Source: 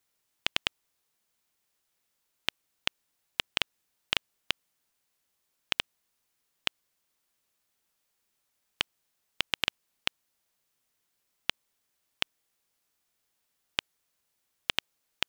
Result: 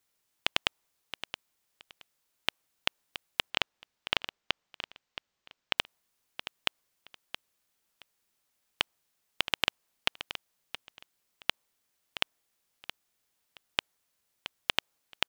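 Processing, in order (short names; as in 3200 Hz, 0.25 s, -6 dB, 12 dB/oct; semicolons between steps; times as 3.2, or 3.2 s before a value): 3.5–5.78 running mean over 4 samples; dynamic EQ 770 Hz, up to +5 dB, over -56 dBFS, Q 0.8; feedback echo 0.672 s, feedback 19%, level -11.5 dB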